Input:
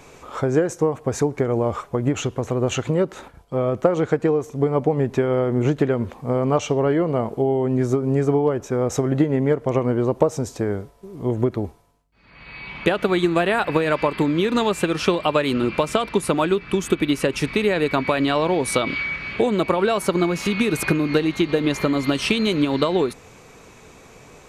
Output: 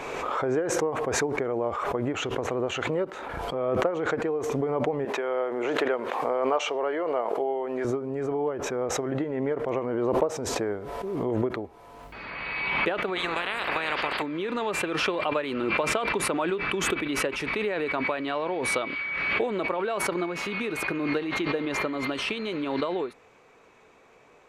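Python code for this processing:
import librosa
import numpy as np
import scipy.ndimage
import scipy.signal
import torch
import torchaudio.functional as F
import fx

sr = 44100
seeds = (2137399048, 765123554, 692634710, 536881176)

y = fx.highpass(x, sr, hz=480.0, slope=12, at=(5.05, 7.85))
y = fx.spec_clip(y, sr, under_db=23, at=(13.15, 14.21), fade=0.02)
y = fx.rider(y, sr, range_db=10, speed_s=0.5)
y = fx.bass_treble(y, sr, bass_db=-13, treble_db=-13)
y = fx.pre_swell(y, sr, db_per_s=25.0)
y = y * librosa.db_to_amplitude(-6.5)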